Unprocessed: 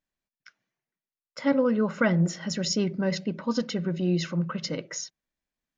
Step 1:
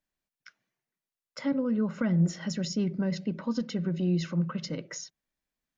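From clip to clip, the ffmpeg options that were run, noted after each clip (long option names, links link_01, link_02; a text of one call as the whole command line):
ffmpeg -i in.wav -filter_complex "[0:a]acrossover=split=280[link_01][link_02];[link_02]acompressor=threshold=-38dB:ratio=3[link_03];[link_01][link_03]amix=inputs=2:normalize=0" out.wav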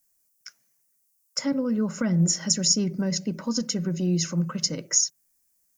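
ffmpeg -i in.wav -af "aexciter=amount=9.5:drive=5.1:freq=5300,volume=2.5dB" out.wav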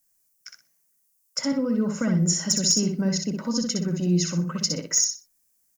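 ffmpeg -i in.wav -filter_complex "[0:a]volume=12.5dB,asoftclip=hard,volume=-12.5dB,asplit=2[link_01][link_02];[link_02]aecho=0:1:62|124|186:0.562|0.118|0.0248[link_03];[link_01][link_03]amix=inputs=2:normalize=0" out.wav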